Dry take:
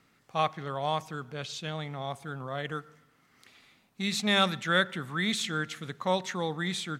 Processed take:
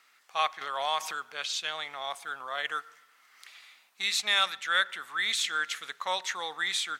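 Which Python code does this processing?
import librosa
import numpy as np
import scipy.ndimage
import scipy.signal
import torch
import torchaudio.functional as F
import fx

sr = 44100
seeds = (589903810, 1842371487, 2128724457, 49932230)

y = fx.rider(x, sr, range_db=3, speed_s=0.5)
y = scipy.signal.sosfilt(scipy.signal.butter(2, 1100.0, 'highpass', fs=sr, output='sos'), y)
y = fx.pre_swell(y, sr, db_per_s=33.0, at=(0.61, 1.27))
y = F.gain(torch.from_numpy(y), 4.0).numpy()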